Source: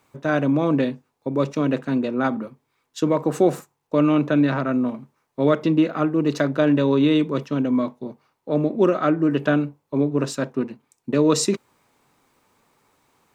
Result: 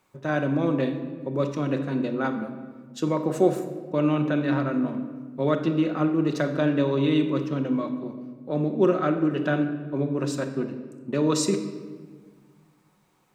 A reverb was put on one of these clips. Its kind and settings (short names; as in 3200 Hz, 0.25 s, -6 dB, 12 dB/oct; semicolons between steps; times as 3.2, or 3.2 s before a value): shoebox room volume 1600 m³, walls mixed, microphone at 0.98 m; gain -5 dB